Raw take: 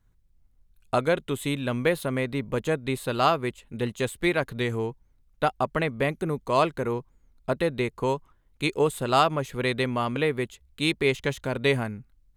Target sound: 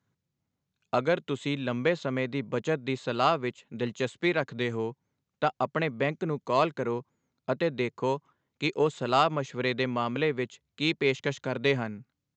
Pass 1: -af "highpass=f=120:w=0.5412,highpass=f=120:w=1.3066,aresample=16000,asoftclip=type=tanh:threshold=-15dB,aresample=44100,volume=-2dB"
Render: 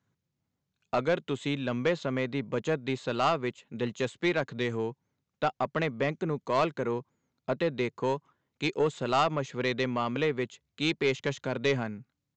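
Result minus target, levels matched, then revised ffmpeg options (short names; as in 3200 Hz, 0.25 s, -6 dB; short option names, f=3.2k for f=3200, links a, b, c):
soft clip: distortion +13 dB
-af "highpass=f=120:w=0.5412,highpass=f=120:w=1.3066,aresample=16000,asoftclip=type=tanh:threshold=-6dB,aresample=44100,volume=-2dB"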